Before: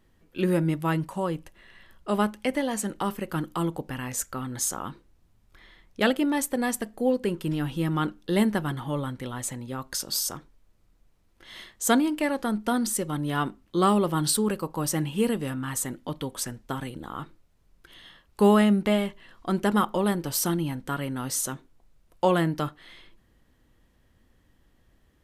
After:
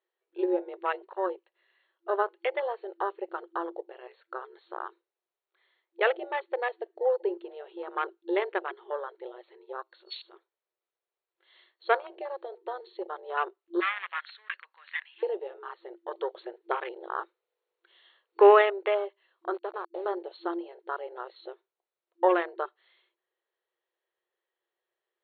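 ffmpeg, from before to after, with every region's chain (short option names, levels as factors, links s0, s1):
-filter_complex "[0:a]asettb=1/sr,asplit=3[s0][s1][s2];[s0]atrim=end=12.184[s3];[s1]atrim=start=12.18:end=13.08,asetpts=PTS-STARTPTS,afade=t=in:d=0.004:c=qsin,afade=t=out:st=0.896:d=0.004:c=qsin,bandreject=f=1400:w=8.6,acrossover=split=240|3000[s4][s5][s6];[s5]acompressor=threshold=0.0224:ratio=2:attack=3.2:release=140:knee=2.83:detection=peak[s7];[s4][s7][s6]amix=inputs=3:normalize=0[s8];[s2]atrim=start=13.076[s9];[s3][s8]acrossfade=d=0.004:c1=hsin:c2=qsin[s10];[s10][s9]acrossfade=d=0.004:c1=qsin:c2=hsin,asettb=1/sr,asplit=3[s11][s12][s13];[s11]atrim=end=13.804[s14];[s12]atrim=start=13.8:end=15.23,asetpts=PTS-STARTPTS,afade=t=in:d=0.004:c=qsin,afade=t=out:st=1.426:d=0.004:c=qsin,asoftclip=type=hard:threshold=0.075,highpass=f=1800:t=q:w=3.3[s15];[s13]atrim=start=15.226[s16];[s14][s15]acrossfade=d=0.004:c1=hsin:c2=qsin[s17];[s17][s16]acrossfade=d=0.004:c1=qsin:c2=hsin,asettb=1/sr,asplit=3[s18][s19][s20];[s18]atrim=end=16.114[s21];[s19]atrim=start=16.11:end=18.7,asetpts=PTS-STARTPTS,afade=t=in:d=0.004:c=qsin,afade=t=out:st=2.586:d=0.004:c=qsin,lowpass=f=5600:w=0.5412,lowpass=f=5600:w=1.3066,acontrast=38,aeval=exprs='val(0)+0.0112*(sin(2*PI*50*n/s)+sin(2*PI*2*50*n/s)/2+sin(2*PI*3*50*n/s)/3+sin(2*PI*4*50*n/s)/4+sin(2*PI*5*50*n/s)/5)':c=same[s22];[s20]atrim=start=18.696[s23];[s21][s22]acrossfade=d=0.004:c1=hsin:c2=qsin[s24];[s24][s23]acrossfade=d=0.004:c1=qsin:c2=hsin,asettb=1/sr,asplit=3[s25][s26][s27];[s25]atrim=end=19.544[s28];[s26]atrim=start=19.54:end=20.06,asetpts=PTS-STARTPTS,afade=t=in:d=0.004:c=qsin,afade=t=out:st=0.516:d=0.004:c=qsin,lowshelf=f=78:g=-10.5,acrossover=split=270|700[s29][s30][s31];[s29]acompressor=threshold=0.02:ratio=4[s32];[s30]acompressor=threshold=0.0126:ratio=4[s33];[s31]acompressor=threshold=0.0141:ratio=4[s34];[s32][s33][s34]amix=inputs=3:normalize=0,aeval=exprs='val(0)*gte(abs(val(0)),0.0211)':c=same[s35];[s27]atrim=start=20.056[s36];[s28][s35]acrossfade=d=0.004:c1=hsin:c2=qsin[s37];[s37][s36]acrossfade=d=0.004:c1=qsin:c2=hsin,afwtdn=0.0251,afftfilt=real='re*between(b*sr/4096,340,4400)':imag='im*between(b*sr/4096,340,4400)':win_size=4096:overlap=0.75"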